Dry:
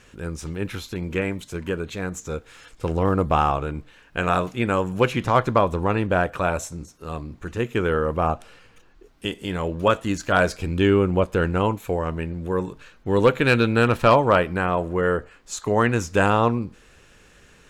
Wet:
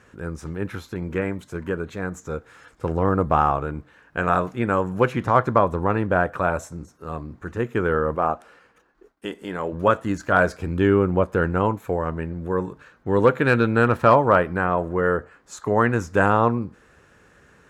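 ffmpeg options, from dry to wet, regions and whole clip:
ffmpeg -i in.wav -filter_complex "[0:a]asettb=1/sr,asplit=3[link_01][link_02][link_03];[link_01]atrim=end=8.154[link_04];[link_02]atrim=start=8.15:end=9.73,asetpts=PTS-STARTPTS,afade=type=in:duration=0.004:curve=qsin,afade=type=out:start_time=1.576:duration=0.004:curve=qsin,agate=range=-33dB:threshold=-51dB:ratio=3:release=100:detection=peak,equalizer=frequency=100:width=1.1:gain=-14[link_05];[link_03]atrim=start=9.726[link_06];[link_04][link_05]acrossfade=duration=0.004:curve1=hsin:curve2=qsin[link_07];[link_07][link_06]acrossfade=duration=0.004:curve1=qsin:curve2=hsin,highpass=66,highshelf=frequency=2100:width_type=q:width=1.5:gain=-7" out.wav

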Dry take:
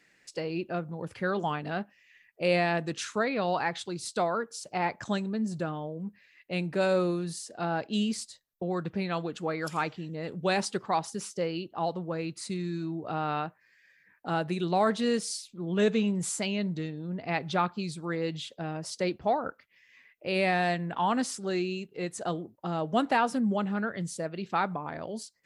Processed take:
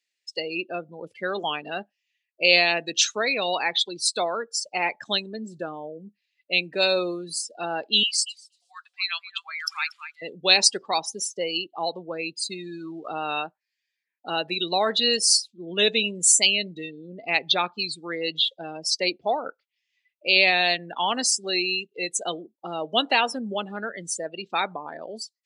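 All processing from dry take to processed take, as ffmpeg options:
ffmpeg -i in.wav -filter_complex "[0:a]asettb=1/sr,asplit=3[link_01][link_02][link_03];[link_01]atrim=end=8.034[link_04];[link_02]atrim=start=8.03:end=10.22,asetpts=PTS-STARTPTS,afade=type=in:duration=0.004:curve=qsin,afade=type=out:start_time=2.186:duration=0.004:curve=qsin,highpass=frequency=1200:width=0.5412,highpass=frequency=1200:width=1.3066,aecho=1:1:235|470|705:0.376|0.0714|0.0136,atrim=end_sample=96579[link_05];[link_03]atrim=start=10.216[link_06];[link_04][link_05]acrossfade=duration=0.004:curve1=hsin:curve2=qsin[link_07];[link_07][link_06]acrossfade=duration=0.004:curve1=qsin:curve2=hsin,asettb=1/sr,asplit=3[link_08][link_09][link_10];[link_08]atrim=end=12.414[link_11];[link_09]atrim=start=12.41:end=13.08,asetpts=PTS-STARTPTS,afade=type=in:duration=0.004:curve=qsin,afade=type=out:start_time=0.666:duration=0.004:curve=qsin,equalizer=frequency=1200:width_type=o:width=0.48:gain=12,aeval=exprs='sgn(val(0))*max(abs(val(0))-0.0015,0)':channel_layout=same[link_12];[link_10]atrim=start=13.076[link_13];[link_11][link_12]acrossfade=duration=0.004:curve1=hsin:curve2=qsin[link_14];[link_14][link_13]acrossfade=duration=0.004:curve1=qsin:curve2=hsin,afftdn=noise_reduction=30:noise_floor=-38,highpass=370,highshelf=frequency=2200:width_type=q:width=1.5:gain=14,volume=4dB" out.wav

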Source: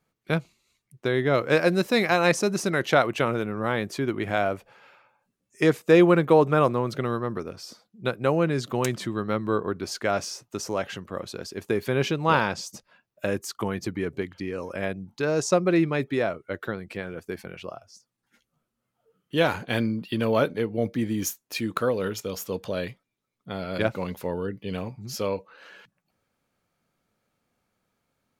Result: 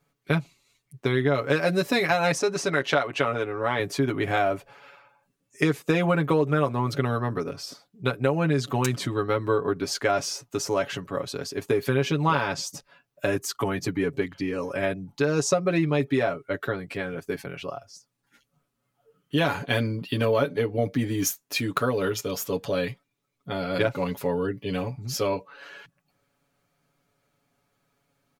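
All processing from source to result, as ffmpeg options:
ffmpeg -i in.wav -filter_complex "[0:a]asettb=1/sr,asplit=3[link_01][link_02][link_03];[link_01]atrim=end=2.384[link_04];[link_02]atrim=start=2.38:end=3.8,asetpts=PTS-STARTPTS,afade=type=in:duration=0.004:curve=qsin,afade=type=out:start_time=1.416:duration=0.004:curve=qsin,adynamicsmooth=sensitivity=1:basefreq=7800,lowshelf=frequency=260:gain=-8.5[link_05];[link_03]atrim=start=3.796[link_06];[link_04][link_05]acrossfade=duration=0.004:curve1=hsin:curve2=qsin[link_07];[link_07][link_06]acrossfade=duration=0.004:curve1=qsin:curve2=hsin,aecho=1:1:7.1:0.83,acompressor=threshold=-20dB:ratio=6,volume=1.5dB" out.wav

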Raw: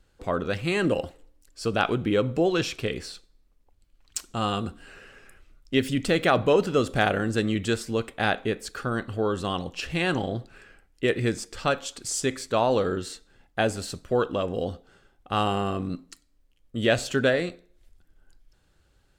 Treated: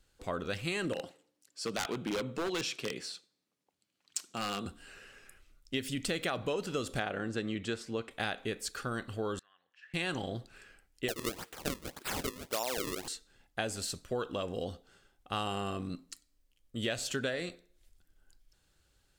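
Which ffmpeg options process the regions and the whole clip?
ffmpeg -i in.wav -filter_complex "[0:a]asettb=1/sr,asplit=3[link_01][link_02][link_03];[link_01]atrim=end=0.934[link_04];[link_02]atrim=start=0.93:end=4.66,asetpts=PTS-STARTPTS,afade=type=in:duration=0.004:curve=qsin,afade=type=out:start_time=3.726:duration=0.004:curve=qsin,highpass=frequency=140:width=0.5412,highpass=frequency=140:width=1.3066,highshelf=frequency=11000:gain=-11.5,aeval=exprs='0.112*(abs(mod(val(0)/0.112+3,4)-2)-1)':channel_layout=same[link_05];[link_03]atrim=start=4.656[link_06];[link_04][link_05]acrossfade=duration=0.004:curve1=hsin:curve2=qsin[link_07];[link_07][link_06]acrossfade=duration=0.004:curve1=qsin:curve2=hsin,asettb=1/sr,asplit=3[link_08][link_09][link_10];[link_08]atrim=end=7.004[link_11];[link_09]atrim=start=7:end=8.11,asetpts=PTS-STARTPTS,afade=type=in:duration=0.004:curve=qsin,afade=type=out:start_time=1.106:duration=0.004:curve=qsin,highpass=frequency=140:poles=1,aemphasis=mode=reproduction:type=75fm[link_12];[link_10]atrim=start=8.106[link_13];[link_11][link_12]acrossfade=duration=0.004:curve1=hsin:curve2=qsin[link_14];[link_14][link_13]acrossfade=duration=0.004:curve1=qsin:curve2=hsin,asettb=1/sr,asplit=3[link_15][link_16][link_17];[link_15]atrim=end=9.394[link_18];[link_16]atrim=start=9.39:end=9.94,asetpts=PTS-STARTPTS,afade=type=in:duration=0.004:curve=qsin,afade=type=out:start_time=0.546:duration=0.004:curve=qsin,acompressor=threshold=-34dB:ratio=5:attack=3.2:release=140:knee=1:detection=peak,bandpass=frequency=1700:width_type=q:width=9.5[link_19];[link_17]atrim=start=9.936[link_20];[link_18][link_19]acrossfade=duration=0.004:curve1=hsin:curve2=qsin[link_21];[link_21][link_20]acrossfade=duration=0.004:curve1=qsin:curve2=hsin,asettb=1/sr,asplit=3[link_22][link_23][link_24];[link_22]atrim=end=11.084[link_25];[link_23]atrim=start=11.08:end=13.08,asetpts=PTS-STARTPTS,afade=type=in:duration=0.004:curve=qsin,afade=type=out:start_time=1.996:duration=0.004:curve=qsin,highpass=310,acrusher=samples=33:mix=1:aa=0.000001:lfo=1:lforange=52.8:lforate=1.8[link_26];[link_24]atrim=start=13.076[link_27];[link_25][link_26]acrossfade=duration=0.004:curve1=hsin:curve2=qsin[link_28];[link_28][link_27]acrossfade=duration=0.004:curve1=qsin:curve2=hsin,highshelf=frequency=2600:gain=9.5,acompressor=threshold=-22dB:ratio=6,volume=-8dB" out.wav

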